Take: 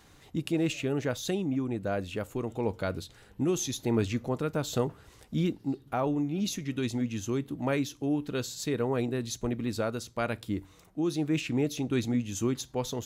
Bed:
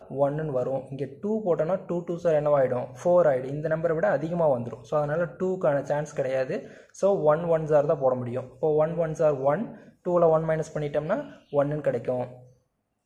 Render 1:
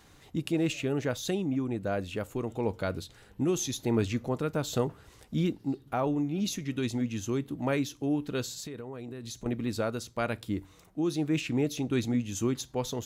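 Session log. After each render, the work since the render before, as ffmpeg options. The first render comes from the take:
-filter_complex "[0:a]asettb=1/sr,asplit=3[a][b][c];[a]atrim=end=8.584[d];[b]atrim=start=8.58:end=9.46,asetpts=PTS-STARTPTS,afade=t=in:d=0.004:c=qsin,afade=t=out:st=0.876:d=0.004:c=qsin,acompressor=threshold=-36dB:ratio=12:attack=3.2:release=140:knee=1:detection=peak[e];[c]atrim=start=9.456[f];[d][e]acrossfade=d=0.004:c1=hsin:c2=qsin[g];[g][f]acrossfade=d=0.004:c1=qsin:c2=hsin"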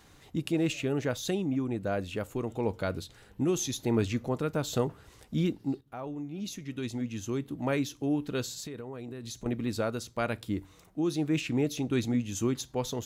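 -filter_complex "[0:a]asplit=2[a][b];[a]atrim=end=5.81,asetpts=PTS-STARTPTS,afade=t=out:st=5.806:d=0.004:c=hsin:silence=0.237137[c];[b]atrim=start=5.81,asetpts=PTS-STARTPTS,afade=t=in:d=2.06:silence=0.237137[d];[c][d]concat=n=2:v=0:a=1"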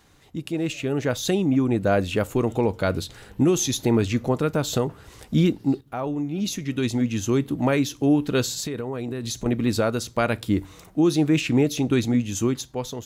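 -af "dynaudnorm=f=250:g=9:m=11dB,alimiter=limit=-10.5dB:level=0:latency=1:release=436"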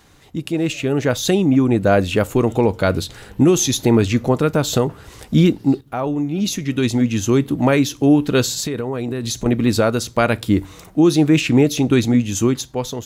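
-af "volume=6dB"

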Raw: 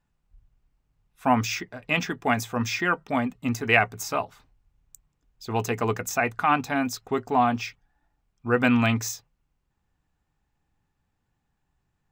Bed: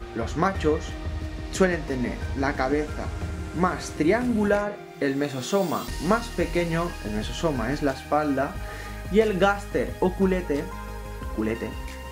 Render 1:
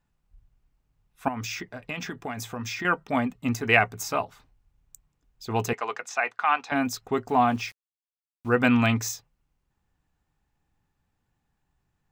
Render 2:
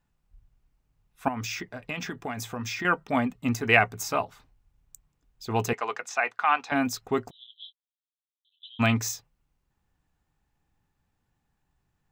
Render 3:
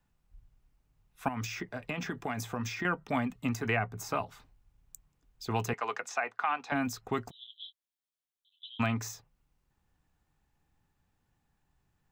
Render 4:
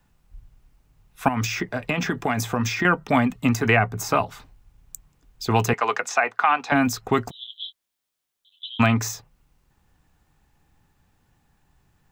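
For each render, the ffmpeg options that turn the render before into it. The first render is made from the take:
-filter_complex "[0:a]asettb=1/sr,asplit=3[a][b][c];[a]atrim=end=1.284[d];[b]atrim=start=1.28:end=2.85,asetpts=PTS-STARTPTS,afade=t=in:d=0.004:c=qsin,afade=t=out:st=1.566:d=0.004:c=qsin,acompressor=threshold=-29dB:ratio=8:attack=3.2:release=140:knee=1:detection=peak[e];[c]atrim=start=2.846[f];[d][e]acrossfade=d=0.004:c1=hsin:c2=qsin[g];[g][f]acrossfade=d=0.004:c1=qsin:c2=hsin,asettb=1/sr,asplit=3[h][i][j];[h]atrim=end=5.734[k];[i]atrim=start=5.73:end=6.72,asetpts=PTS-STARTPTS,afade=t=in:d=0.004:c=qsin,afade=t=out:st=0.986:d=0.004:c=qsin,highpass=720,lowpass=4.8k[l];[j]atrim=start=6.716[m];[k][l]acrossfade=d=0.004:c1=hsin:c2=qsin[n];[n][m]acrossfade=d=0.004:c1=qsin:c2=hsin,asplit=3[o][p][q];[o]afade=t=out:st=7.28:d=0.02[r];[p]aeval=exprs='val(0)*gte(abs(val(0)),0.00473)':c=same,afade=t=in:st=7.28:d=0.02,afade=t=out:st=8.54:d=0.02[s];[q]afade=t=in:st=8.54:d=0.02[t];[r][s][t]amix=inputs=3:normalize=0"
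-filter_complex "[0:a]asplit=3[a][b][c];[a]afade=t=out:st=7.29:d=0.02[d];[b]asuperpass=centerf=3500:order=12:qfactor=3.9,afade=t=in:st=7.29:d=0.02,afade=t=out:st=8.79:d=0.02[e];[c]afade=t=in:st=8.79:d=0.02[f];[d][e][f]amix=inputs=3:normalize=0"
-filter_complex "[0:a]acrossover=split=210|840|1700[a][b][c][d];[a]acompressor=threshold=-33dB:ratio=4[e];[b]acompressor=threshold=-36dB:ratio=4[f];[c]acompressor=threshold=-34dB:ratio=4[g];[d]acompressor=threshold=-41dB:ratio=4[h];[e][f][g][h]amix=inputs=4:normalize=0"
-af "volume=11.5dB"

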